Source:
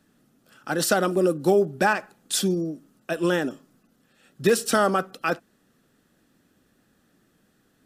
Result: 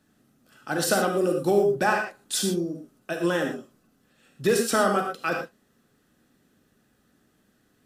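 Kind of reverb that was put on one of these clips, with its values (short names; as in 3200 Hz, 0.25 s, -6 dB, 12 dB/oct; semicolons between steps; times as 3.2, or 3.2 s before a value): non-linear reverb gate 0.14 s flat, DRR 2 dB; gain -3 dB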